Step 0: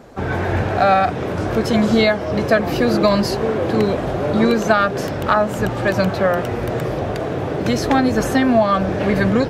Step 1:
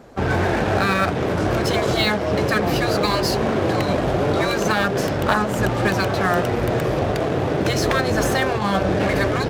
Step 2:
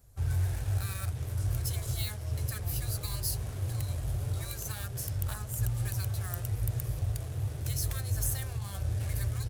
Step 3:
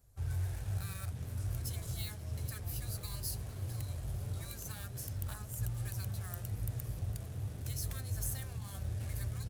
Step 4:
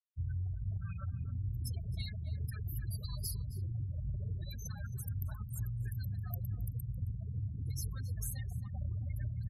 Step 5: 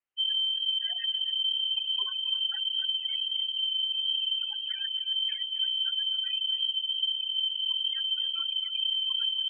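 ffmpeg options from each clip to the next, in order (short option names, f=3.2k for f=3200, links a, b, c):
-filter_complex "[0:a]afftfilt=real='re*lt(hypot(re,im),0.891)':imag='im*lt(hypot(re,im),0.891)':win_size=1024:overlap=0.75,asplit=2[a][b];[b]acrusher=bits=3:mix=0:aa=0.5,volume=-4.5dB[c];[a][c]amix=inputs=2:normalize=0,volume=-2.5dB"
-af "firequalizer=gain_entry='entry(110,0);entry(180,-27);entry(10000,6)':delay=0.05:min_phase=1,volume=-3dB"
-filter_complex "[0:a]asplit=5[a][b][c][d][e];[b]adelay=455,afreqshift=74,volume=-18dB[f];[c]adelay=910,afreqshift=148,volume=-25.1dB[g];[d]adelay=1365,afreqshift=222,volume=-32.3dB[h];[e]adelay=1820,afreqshift=296,volume=-39.4dB[i];[a][f][g][h][i]amix=inputs=5:normalize=0,volume=-6.5dB"
-filter_complex "[0:a]afftfilt=real='re*gte(hypot(re,im),0.0126)':imag='im*gte(hypot(re,im),0.0126)':win_size=1024:overlap=0.75,acompressor=threshold=-38dB:ratio=6,asplit=2[a][b];[b]adelay=268.2,volume=-14dB,highshelf=f=4k:g=-6.04[c];[a][c]amix=inputs=2:normalize=0,volume=4dB"
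-af "lowpass=f=2.7k:t=q:w=0.5098,lowpass=f=2.7k:t=q:w=0.6013,lowpass=f=2.7k:t=q:w=0.9,lowpass=f=2.7k:t=q:w=2.563,afreqshift=-3200,volume=8dB"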